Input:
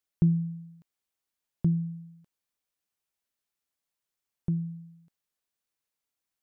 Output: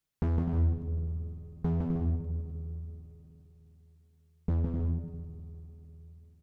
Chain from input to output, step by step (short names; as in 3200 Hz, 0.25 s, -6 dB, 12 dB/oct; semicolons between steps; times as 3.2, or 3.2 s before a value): octaver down 1 oct, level +4 dB; spring tank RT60 3.8 s, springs 50 ms, chirp 70 ms, DRR 11.5 dB; flange 0.6 Hz, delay 5.7 ms, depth 9.1 ms, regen +34%; hard clip -31 dBFS, distortion -4 dB; tone controls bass +6 dB, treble -1 dB; compressor, threshold -32 dBFS, peak gain reduction 6 dB; bouncing-ball echo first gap 0.16 s, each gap 0.6×, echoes 5; Doppler distortion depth 0.7 ms; gain +5 dB